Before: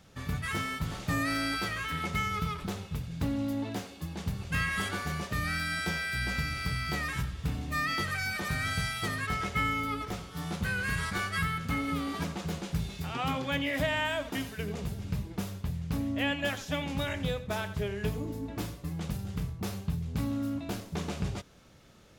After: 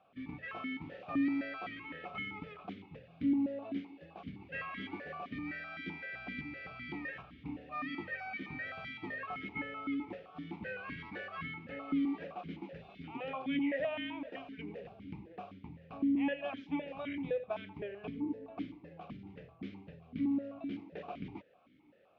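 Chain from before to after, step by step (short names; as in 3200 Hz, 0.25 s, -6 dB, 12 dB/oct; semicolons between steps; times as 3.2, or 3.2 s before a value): air absorption 270 m; vowel sequencer 7.8 Hz; gain +6 dB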